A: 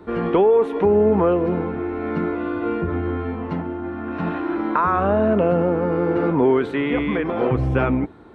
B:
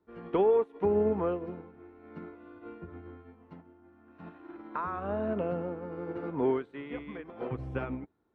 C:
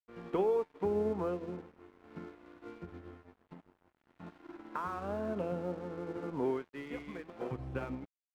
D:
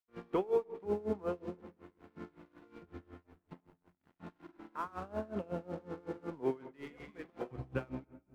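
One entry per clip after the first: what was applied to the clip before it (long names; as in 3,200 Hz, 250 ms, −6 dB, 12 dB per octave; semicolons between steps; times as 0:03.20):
expander for the loud parts 2.5 to 1, over −28 dBFS; level −8 dB
in parallel at +1 dB: downward compressor, threshold −36 dBFS, peak gain reduction 14 dB; on the sum: tuned comb filter 180 Hz, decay 0.56 s, harmonics all, mix 60%; dead-zone distortion −55.5 dBFS
on a send at −13 dB: convolution reverb RT60 1.3 s, pre-delay 8 ms; on the sum: tremolo with a sine in dB 5.4 Hz, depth 22 dB; level +2.5 dB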